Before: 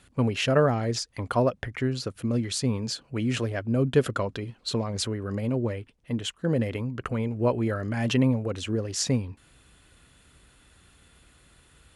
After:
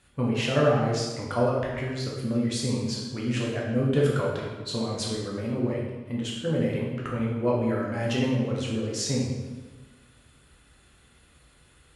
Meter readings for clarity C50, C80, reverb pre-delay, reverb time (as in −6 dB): 1.0 dB, 4.0 dB, 8 ms, 1.3 s